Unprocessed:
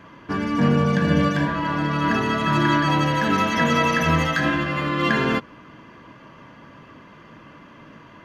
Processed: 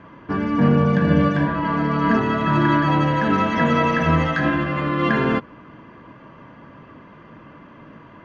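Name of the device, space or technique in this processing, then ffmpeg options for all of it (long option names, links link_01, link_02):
through cloth: -filter_complex "[0:a]asettb=1/sr,asplit=3[link_01][link_02][link_03];[link_01]atrim=end=1.644[link_04];[link_02]atrim=start=1.64:end=2.19,asetpts=PTS-STARTPTS,afade=type=in:duration=0.004:curve=qsin,afade=type=out:start_time=0.546:duration=0.004:curve=qsin,aecho=1:1:4.4:0.59,atrim=end_sample=24255[link_05];[link_03]atrim=start=2.186[link_06];[link_04][link_05]acrossfade=duration=0.004:curve1=hsin:curve2=qsin[link_07];[link_07][link_06]acrossfade=duration=0.004:curve1=qsin:curve2=hsin,lowpass=7800,highshelf=frequency=3700:gain=-17,volume=2.5dB"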